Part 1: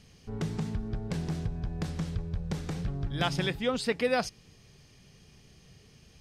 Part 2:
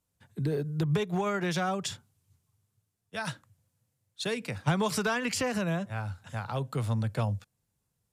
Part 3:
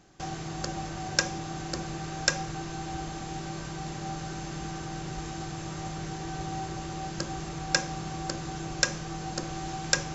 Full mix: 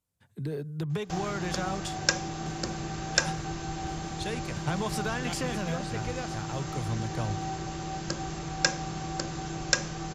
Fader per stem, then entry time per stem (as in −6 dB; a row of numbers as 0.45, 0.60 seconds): −11.0, −4.0, +0.5 decibels; 2.05, 0.00, 0.90 seconds